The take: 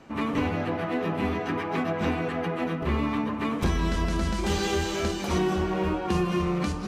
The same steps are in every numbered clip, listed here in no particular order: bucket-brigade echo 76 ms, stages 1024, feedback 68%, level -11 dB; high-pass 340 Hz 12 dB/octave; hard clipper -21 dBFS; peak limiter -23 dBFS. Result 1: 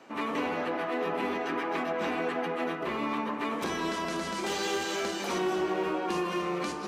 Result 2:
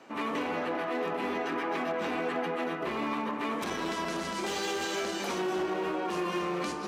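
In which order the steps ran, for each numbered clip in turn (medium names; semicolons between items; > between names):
high-pass > hard clipper > peak limiter > bucket-brigade echo; bucket-brigade echo > hard clipper > high-pass > peak limiter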